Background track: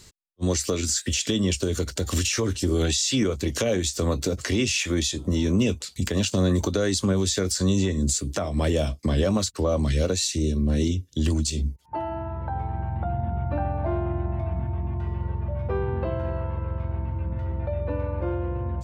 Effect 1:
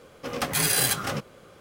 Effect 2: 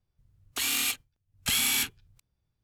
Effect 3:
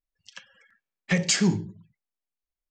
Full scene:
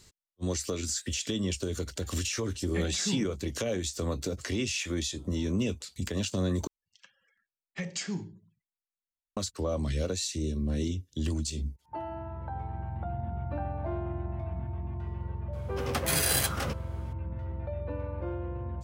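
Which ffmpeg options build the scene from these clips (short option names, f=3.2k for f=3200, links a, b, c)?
-filter_complex "[3:a]asplit=2[a][b];[0:a]volume=-7.5dB[c];[a]lowpass=2.3k[d];[c]asplit=2[e][f];[e]atrim=end=6.674[g];[b]atrim=end=2.7,asetpts=PTS-STARTPTS,volume=-12.5dB[h];[f]atrim=start=9.366[i];[d]atrim=end=2.7,asetpts=PTS-STARTPTS,volume=-10.5dB,afade=t=in:d=0.004:c=hsin,afade=t=out:st=2.696:d=0.004:c=hsin,adelay=1650[j];[1:a]atrim=end=1.6,asetpts=PTS-STARTPTS,volume=-4dB,afade=t=in:d=0.004:c=hsin,afade=t=out:st=1.596:d=0.004:c=hsin,adelay=15530[k];[g][h]acrossfade=d=0.004:c1=hsin:c2=hsin[l];[l][i]acrossfade=d=0.004:c1=hsin:c2=hsin[m];[m][j][k]amix=inputs=3:normalize=0"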